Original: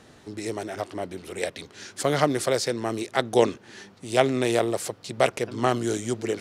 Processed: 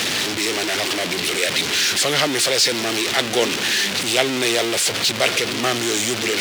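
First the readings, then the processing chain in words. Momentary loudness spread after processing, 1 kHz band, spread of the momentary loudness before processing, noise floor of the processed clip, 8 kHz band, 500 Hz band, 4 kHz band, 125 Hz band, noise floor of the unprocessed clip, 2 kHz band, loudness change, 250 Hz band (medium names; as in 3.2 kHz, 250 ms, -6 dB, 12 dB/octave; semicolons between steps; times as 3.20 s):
4 LU, +2.5 dB, 12 LU, -25 dBFS, +14.5 dB, +1.5 dB, +17.5 dB, -0.5 dB, -53 dBFS, +12.5 dB, +8.0 dB, +3.0 dB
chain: jump at every zero crossing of -18 dBFS; frequency weighting D; trim -3 dB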